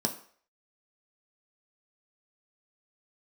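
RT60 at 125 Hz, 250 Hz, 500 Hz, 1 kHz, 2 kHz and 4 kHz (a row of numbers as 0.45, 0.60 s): 0.35, 0.40, 0.50, 0.50, 0.50, 0.50 s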